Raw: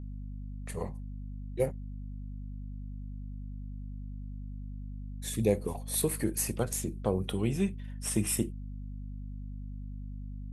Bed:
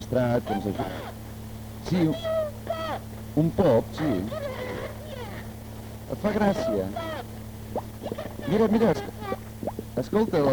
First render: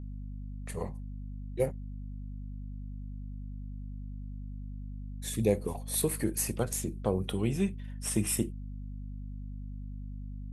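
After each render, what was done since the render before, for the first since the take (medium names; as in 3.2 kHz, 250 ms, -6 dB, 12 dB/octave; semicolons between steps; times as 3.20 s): no audible change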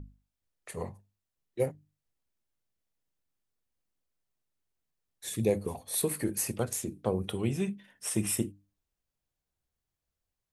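hum notches 50/100/150/200/250/300 Hz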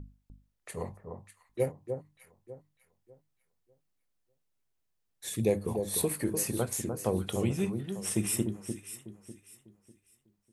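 echo whose repeats swap between lows and highs 299 ms, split 1.3 kHz, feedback 53%, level -6 dB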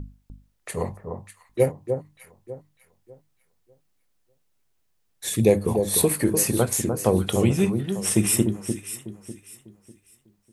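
trim +9.5 dB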